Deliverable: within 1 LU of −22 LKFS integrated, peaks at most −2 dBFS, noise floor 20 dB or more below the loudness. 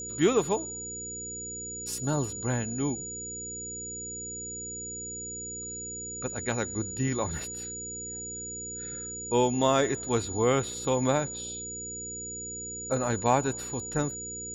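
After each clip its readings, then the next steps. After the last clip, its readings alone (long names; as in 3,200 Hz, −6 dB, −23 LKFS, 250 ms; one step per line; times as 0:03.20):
mains hum 60 Hz; hum harmonics up to 480 Hz; level of the hum −43 dBFS; interfering tone 6,900 Hz; level of the tone −36 dBFS; integrated loudness −30.5 LKFS; sample peak −10.5 dBFS; target loudness −22.0 LKFS
→ hum removal 60 Hz, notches 8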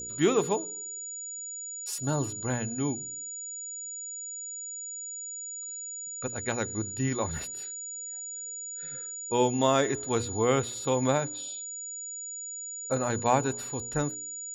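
mains hum none found; interfering tone 6,900 Hz; level of the tone −36 dBFS
→ notch filter 6,900 Hz, Q 30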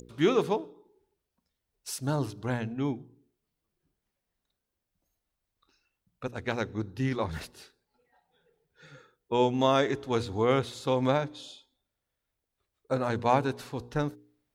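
interfering tone none found; integrated loudness −29.5 LKFS; sample peak −10.0 dBFS; target loudness −22.0 LKFS
→ level +7.5 dB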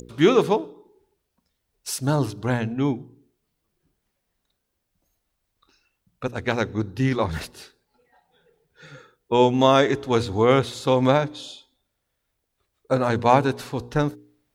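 integrated loudness −22.0 LKFS; sample peak −2.5 dBFS; background noise floor −78 dBFS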